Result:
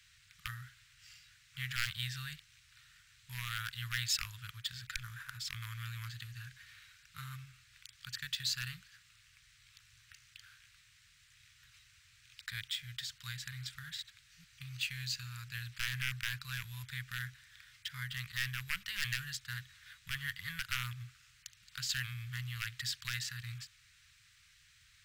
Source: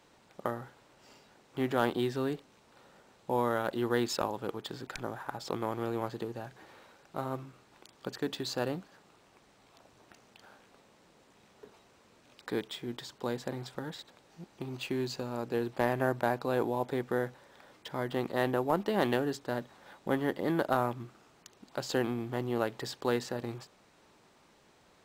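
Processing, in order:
wave folding −19.5 dBFS
inverse Chebyshev band-stop filter 230–820 Hz, stop band 50 dB
level +4 dB

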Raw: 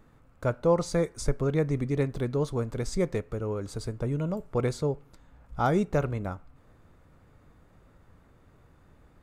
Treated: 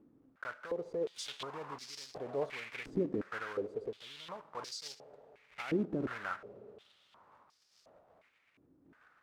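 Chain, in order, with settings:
one scale factor per block 3 bits
brickwall limiter −23.5 dBFS, peak gain reduction 11.5 dB
sample-and-hold tremolo
comb and all-pass reverb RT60 3.1 s, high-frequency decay 0.95×, pre-delay 15 ms, DRR 16 dB
band-pass on a step sequencer 2.8 Hz 290–5,100 Hz
level +9 dB

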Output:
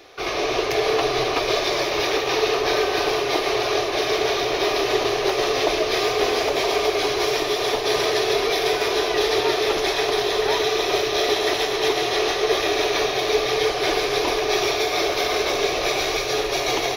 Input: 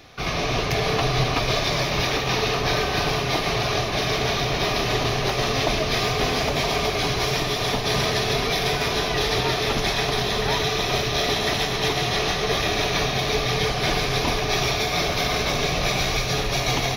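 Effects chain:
low shelf with overshoot 270 Hz −10.5 dB, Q 3

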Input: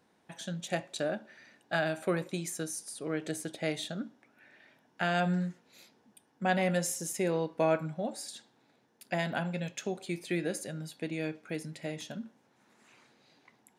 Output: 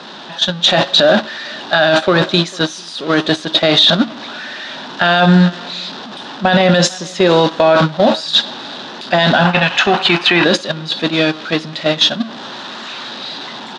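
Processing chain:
converter with a step at zero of −38.5 dBFS
loudspeaker in its box 260–4,700 Hz, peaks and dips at 310 Hz −5 dB, 460 Hz −9 dB, 740 Hz −3 dB, 2,200 Hz −10 dB, 3,700 Hz +8 dB
on a send: single-tap delay 448 ms −21.5 dB
on the sum: automatic gain control gain up to 4 dB
noise gate −33 dBFS, range −19 dB
gain on a spectral selection 0:09.46–0:10.44, 670–3,100 Hz +9 dB
boost into a limiter +34 dB
level −1 dB

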